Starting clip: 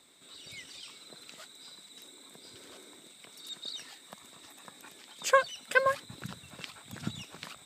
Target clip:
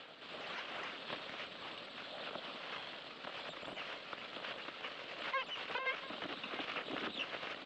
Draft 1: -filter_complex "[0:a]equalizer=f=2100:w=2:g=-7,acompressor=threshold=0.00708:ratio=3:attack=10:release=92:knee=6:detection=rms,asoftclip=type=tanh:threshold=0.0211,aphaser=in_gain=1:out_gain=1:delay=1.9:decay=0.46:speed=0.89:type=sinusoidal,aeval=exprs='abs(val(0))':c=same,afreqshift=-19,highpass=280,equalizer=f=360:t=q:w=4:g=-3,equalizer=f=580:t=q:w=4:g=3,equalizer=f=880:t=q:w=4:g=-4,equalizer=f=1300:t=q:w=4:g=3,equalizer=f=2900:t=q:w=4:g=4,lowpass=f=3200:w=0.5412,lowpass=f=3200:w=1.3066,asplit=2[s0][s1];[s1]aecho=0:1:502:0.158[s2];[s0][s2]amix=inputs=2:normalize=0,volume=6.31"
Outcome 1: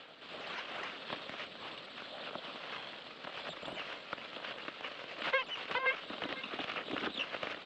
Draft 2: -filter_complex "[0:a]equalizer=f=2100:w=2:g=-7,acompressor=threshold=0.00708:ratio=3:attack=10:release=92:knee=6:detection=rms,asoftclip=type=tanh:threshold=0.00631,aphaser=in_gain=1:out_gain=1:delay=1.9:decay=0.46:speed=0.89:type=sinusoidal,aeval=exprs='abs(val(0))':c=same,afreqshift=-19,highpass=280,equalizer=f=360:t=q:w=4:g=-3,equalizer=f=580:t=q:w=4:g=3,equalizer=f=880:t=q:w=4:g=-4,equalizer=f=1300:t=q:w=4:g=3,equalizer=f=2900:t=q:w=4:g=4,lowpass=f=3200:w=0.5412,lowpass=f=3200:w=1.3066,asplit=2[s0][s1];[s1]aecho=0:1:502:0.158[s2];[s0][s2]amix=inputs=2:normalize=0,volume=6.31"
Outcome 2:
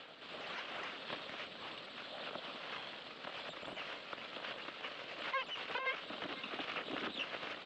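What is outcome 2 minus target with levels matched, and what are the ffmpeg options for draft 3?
echo 187 ms early
-filter_complex "[0:a]equalizer=f=2100:w=2:g=-7,acompressor=threshold=0.00708:ratio=3:attack=10:release=92:knee=6:detection=rms,asoftclip=type=tanh:threshold=0.00631,aphaser=in_gain=1:out_gain=1:delay=1.9:decay=0.46:speed=0.89:type=sinusoidal,aeval=exprs='abs(val(0))':c=same,afreqshift=-19,highpass=280,equalizer=f=360:t=q:w=4:g=-3,equalizer=f=580:t=q:w=4:g=3,equalizer=f=880:t=q:w=4:g=-4,equalizer=f=1300:t=q:w=4:g=3,equalizer=f=2900:t=q:w=4:g=4,lowpass=f=3200:w=0.5412,lowpass=f=3200:w=1.3066,asplit=2[s0][s1];[s1]aecho=0:1:689:0.158[s2];[s0][s2]amix=inputs=2:normalize=0,volume=6.31"

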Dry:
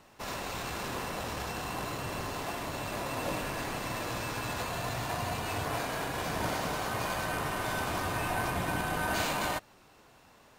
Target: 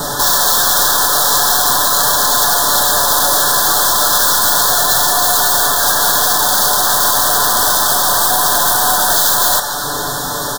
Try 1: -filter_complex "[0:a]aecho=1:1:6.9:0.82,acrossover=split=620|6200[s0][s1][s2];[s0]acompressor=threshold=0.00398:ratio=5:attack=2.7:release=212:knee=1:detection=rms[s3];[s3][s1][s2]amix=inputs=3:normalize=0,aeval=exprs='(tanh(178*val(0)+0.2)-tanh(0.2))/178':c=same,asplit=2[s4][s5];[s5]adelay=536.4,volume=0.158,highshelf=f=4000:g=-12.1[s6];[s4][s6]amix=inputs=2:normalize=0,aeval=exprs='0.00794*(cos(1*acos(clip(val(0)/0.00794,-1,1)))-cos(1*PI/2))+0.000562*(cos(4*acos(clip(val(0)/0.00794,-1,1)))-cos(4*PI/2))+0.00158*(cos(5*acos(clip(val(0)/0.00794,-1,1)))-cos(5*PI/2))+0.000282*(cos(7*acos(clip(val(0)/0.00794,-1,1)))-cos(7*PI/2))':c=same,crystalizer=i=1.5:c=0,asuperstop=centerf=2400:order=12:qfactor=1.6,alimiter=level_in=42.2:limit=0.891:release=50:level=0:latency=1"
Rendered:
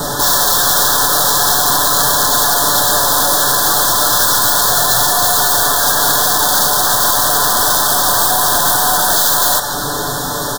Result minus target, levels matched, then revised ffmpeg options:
compression: peak gain reduction -9 dB
-filter_complex "[0:a]aecho=1:1:6.9:0.82,acrossover=split=620|6200[s0][s1][s2];[s0]acompressor=threshold=0.00112:ratio=5:attack=2.7:release=212:knee=1:detection=rms[s3];[s3][s1][s2]amix=inputs=3:normalize=0,aeval=exprs='(tanh(178*val(0)+0.2)-tanh(0.2))/178':c=same,asplit=2[s4][s5];[s5]adelay=536.4,volume=0.158,highshelf=f=4000:g=-12.1[s6];[s4][s6]amix=inputs=2:normalize=0,aeval=exprs='0.00794*(cos(1*acos(clip(val(0)/0.00794,-1,1)))-cos(1*PI/2))+0.000562*(cos(4*acos(clip(val(0)/0.00794,-1,1)))-cos(4*PI/2))+0.00158*(cos(5*acos(clip(val(0)/0.00794,-1,1)))-cos(5*PI/2))+0.000282*(cos(7*acos(clip(val(0)/0.00794,-1,1)))-cos(7*PI/2))':c=same,crystalizer=i=1.5:c=0,asuperstop=centerf=2400:order=12:qfactor=1.6,alimiter=level_in=42.2:limit=0.891:release=50:level=0:latency=1"

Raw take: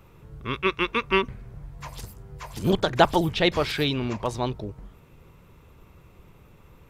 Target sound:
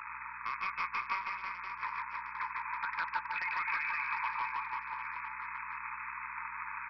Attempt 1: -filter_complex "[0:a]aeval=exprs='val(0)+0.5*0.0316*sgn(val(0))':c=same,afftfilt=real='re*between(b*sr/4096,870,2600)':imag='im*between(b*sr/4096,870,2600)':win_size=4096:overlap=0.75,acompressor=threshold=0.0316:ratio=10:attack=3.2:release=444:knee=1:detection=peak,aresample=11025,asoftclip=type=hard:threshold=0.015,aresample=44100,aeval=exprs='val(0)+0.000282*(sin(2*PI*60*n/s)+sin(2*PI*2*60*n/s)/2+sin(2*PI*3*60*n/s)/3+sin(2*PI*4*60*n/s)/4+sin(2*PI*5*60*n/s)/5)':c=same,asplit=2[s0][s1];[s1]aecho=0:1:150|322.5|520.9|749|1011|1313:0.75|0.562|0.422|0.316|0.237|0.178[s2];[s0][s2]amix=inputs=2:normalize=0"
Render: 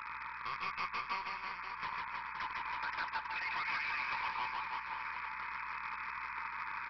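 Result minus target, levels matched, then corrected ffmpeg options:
hard clipper: distortion +10 dB
-filter_complex "[0:a]aeval=exprs='val(0)+0.5*0.0316*sgn(val(0))':c=same,afftfilt=real='re*between(b*sr/4096,870,2600)':imag='im*between(b*sr/4096,870,2600)':win_size=4096:overlap=0.75,acompressor=threshold=0.0316:ratio=10:attack=3.2:release=444:knee=1:detection=peak,aresample=11025,asoftclip=type=hard:threshold=0.0335,aresample=44100,aeval=exprs='val(0)+0.000282*(sin(2*PI*60*n/s)+sin(2*PI*2*60*n/s)/2+sin(2*PI*3*60*n/s)/3+sin(2*PI*4*60*n/s)/4+sin(2*PI*5*60*n/s)/5)':c=same,asplit=2[s0][s1];[s1]aecho=0:1:150|322.5|520.9|749|1011|1313:0.75|0.562|0.422|0.316|0.237|0.178[s2];[s0][s2]amix=inputs=2:normalize=0"

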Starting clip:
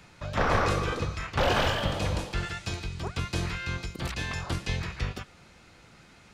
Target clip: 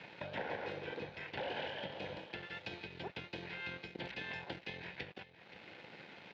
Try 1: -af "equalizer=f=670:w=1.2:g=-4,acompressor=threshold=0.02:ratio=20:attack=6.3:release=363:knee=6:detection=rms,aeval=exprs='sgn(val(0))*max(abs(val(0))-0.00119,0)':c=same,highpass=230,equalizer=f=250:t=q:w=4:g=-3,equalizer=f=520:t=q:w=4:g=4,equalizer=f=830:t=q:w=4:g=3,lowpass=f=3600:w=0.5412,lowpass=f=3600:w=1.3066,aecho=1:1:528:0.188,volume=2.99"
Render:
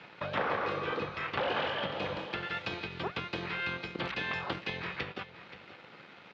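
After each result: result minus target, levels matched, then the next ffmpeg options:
compression: peak gain reduction -7 dB; 1 kHz band +2.0 dB
-af "equalizer=f=670:w=1.2:g=-4,acompressor=threshold=0.00794:ratio=20:attack=6.3:release=363:knee=6:detection=rms,aeval=exprs='sgn(val(0))*max(abs(val(0))-0.00119,0)':c=same,highpass=230,equalizer=f=250:t=q:w=4:g=-3,equalizer=f=520:t=q:w=4:g=4,equalizer=f=830:t=q:w=4:g=3,lowpass=f=3600:w=0.5412,lowpass=f=3600:w=1.3066,aecho=1:1:528:0.188,volume=2.99"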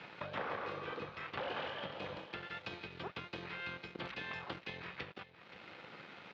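1 kHz band +2.5 dB
-af "asuperstop=centerf=1200:order=4:qfactor=2.4,equalizer=f=670:w=1.2:g=-4,acompressor=threshold=0.00794:ratio=20:attack=6.3:release=363:knee=6:detection=rms,aeval=exprs='sgn(val(0))*max(abs(val(0))-0.00119,0)':c=same,highpass=230,equalizer=f=250:t=q:w=4:g=-3,equalizer=f=520:t=q:w=4:g=4,equalizer=f=830:t=q:w=4:g=3,lowpass=f=3600:w=0.5412,lowpass=f=3600:w=1.3066,aecho=1:1:528:0.188,volume=2.99"

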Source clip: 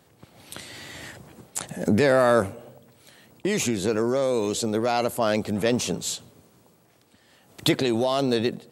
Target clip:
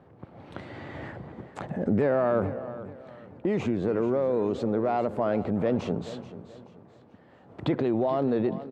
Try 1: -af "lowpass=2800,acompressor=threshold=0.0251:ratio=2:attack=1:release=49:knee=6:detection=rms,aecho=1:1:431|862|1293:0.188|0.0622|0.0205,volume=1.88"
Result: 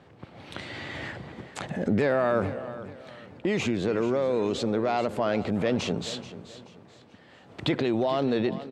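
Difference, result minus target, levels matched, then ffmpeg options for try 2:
2 kHz band +7.0 dB
-af "lowpass=1200,acompressor=threshold=0.0251:ratio=2:attack=1:release=49:knee=6:detection=rms,aecho=1:1:431|862|1293:0.188|0.0622|0.0205,volume=1.88"

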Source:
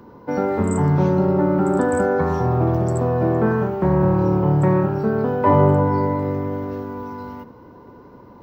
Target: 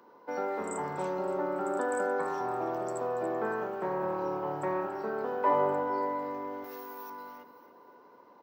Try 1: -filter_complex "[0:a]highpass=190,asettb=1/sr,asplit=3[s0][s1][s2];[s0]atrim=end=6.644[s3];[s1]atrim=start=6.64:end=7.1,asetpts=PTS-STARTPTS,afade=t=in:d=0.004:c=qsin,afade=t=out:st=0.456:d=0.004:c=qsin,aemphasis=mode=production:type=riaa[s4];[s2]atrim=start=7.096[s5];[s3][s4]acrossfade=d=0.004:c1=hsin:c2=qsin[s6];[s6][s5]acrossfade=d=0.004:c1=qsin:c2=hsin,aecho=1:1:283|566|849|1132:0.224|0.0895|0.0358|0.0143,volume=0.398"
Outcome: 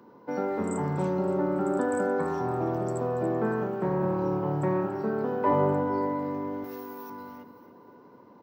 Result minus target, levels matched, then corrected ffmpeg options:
250 Hz band +5.0 dB
-filter_complex "[0:a]highpass=500,asettb=1/sr,asplit=3[s0][s1][s2];[s0]atrim=end=6.644[s3];[s1]atrim=start=6.64:end=7.1,asetpts=PTS-STARTPTS,afade=t=in:d=0.004:c=qsin,afade=t=out:st=0.456:d=0.004:c=qsin,aemphasis=mode=production:type=riaa[s4];[s2]atrim=start=7.096[s5];[s3][s4]acrossfade=d=0.004:c1=hsin:c2=qsin[s6];[s6][s5]acrossfade=d=0.004:c1=qsin:c2=hsin,aecho=1:1:283|566|849|1132:0.224|0.0895|0.0358|0.0143,volume=0.398"

